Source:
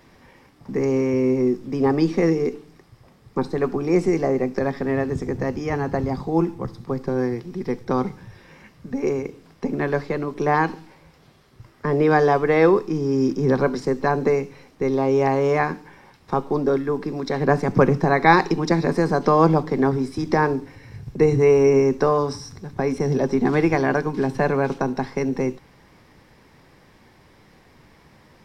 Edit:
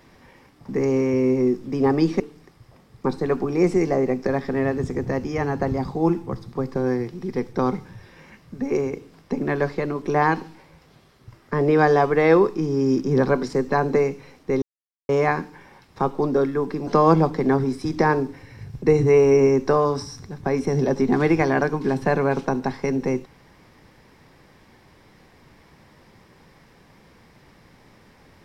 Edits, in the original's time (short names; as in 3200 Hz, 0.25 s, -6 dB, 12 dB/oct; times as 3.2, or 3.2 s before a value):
2.2–2.52 cut
14.94–15.41 mute
17.19–19.2 cut